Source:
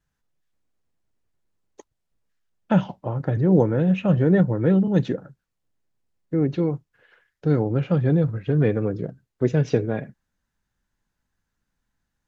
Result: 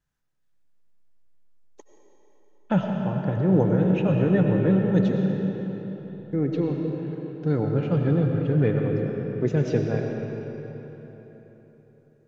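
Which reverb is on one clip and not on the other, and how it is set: digital reverb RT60 4 s, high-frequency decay 0.75×, pre-delay 55 ms, DRR 1.5 dB; gain -3.5 dB

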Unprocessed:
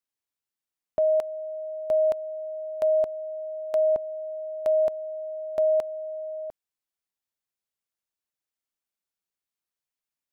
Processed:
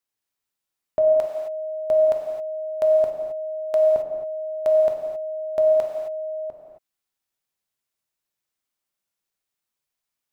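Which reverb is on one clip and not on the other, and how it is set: non-linear reverb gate 0.29 s flat, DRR 0.5 dB; gain +3 dB

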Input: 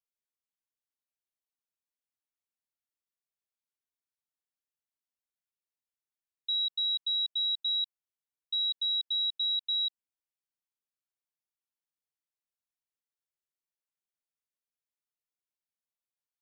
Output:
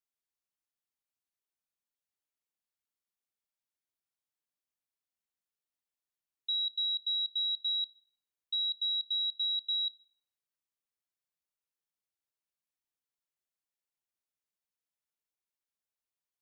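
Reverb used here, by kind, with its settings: Schroeder reverb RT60 0.52 s, combs from 28 ms, DRR 18.5 dB; gain -1.5 dB

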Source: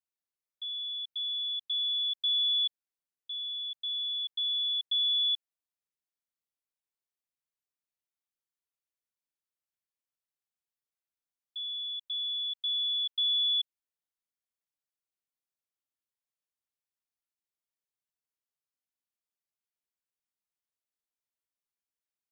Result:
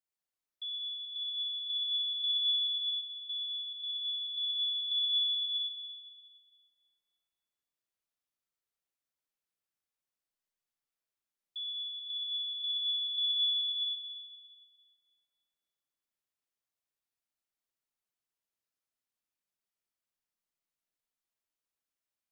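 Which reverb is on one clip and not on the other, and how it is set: digital reverb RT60 2.5 s, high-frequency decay 0.7×, pre-delay 50 ms, DRR -0.5 dB; gain -2 dB

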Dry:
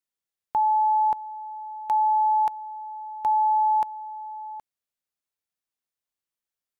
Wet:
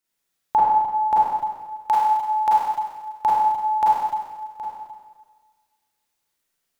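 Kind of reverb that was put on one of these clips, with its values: Schroeder reverb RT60 1.5 s, combs from 33 ms, DRR -7.5 dB; gain +5.5 dB

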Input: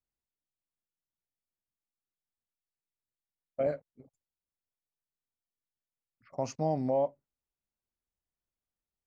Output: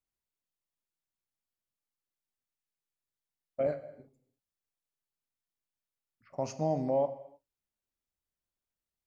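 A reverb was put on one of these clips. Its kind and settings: non-linear reverb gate 0.34 s falling, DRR 10.5 dB; gain -1 dB

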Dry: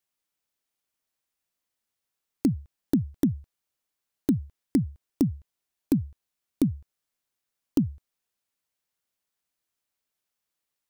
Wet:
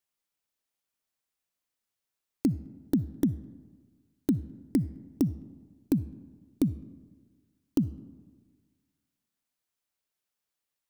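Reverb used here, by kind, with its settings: digital reverb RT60 1.5 s, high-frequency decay 0.45×, pre-delay 20 ms, DRR 17.5 dB; gain -2.5 dB

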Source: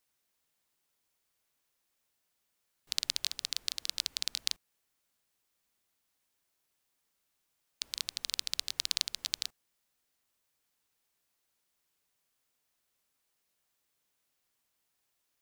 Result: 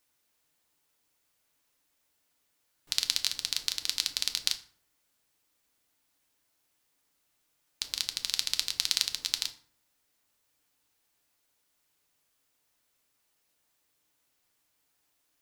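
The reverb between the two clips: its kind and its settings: FDN reverb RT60 0.52 s, low-frequency decay 1.35×, high-frequency decay 0.65×, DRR 6.5 dB; gain +4 dB

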